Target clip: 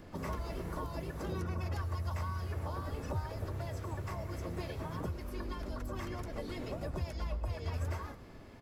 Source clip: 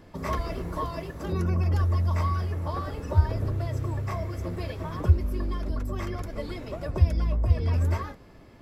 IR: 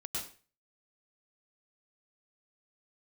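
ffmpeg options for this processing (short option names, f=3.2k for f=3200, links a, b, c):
-filter_complex "[0:a]acrossover=split=480|6700[a][b][c];[a]acompressor=threshold=-37dB:ratio=4[d];[b]acompressor=threshold=-43dB:ratio=4[e];[c]acompressor=threshold=-58dB:ratio=4[f];[d][e][f]amix=inputs=3:normalize=0,asplit=3[g][h][i];[h]asetrate=37084,aresample=44100,atempo=1.18921,volume=-9dB[j];[i]asetrate=58866,aresample=44100,atempo=0.749154,volume=-12dB[k];[g][j][k]amix=inputs=3:normalize=0,asplit=2[l][m];[1:a]atrim=start_sample=2205[n];[m][n]afir=irnorm=-1:irlink=0,volume=-14dB[o];[l][o]amix=inputs=2:normalize=0,volume=-2.5dB"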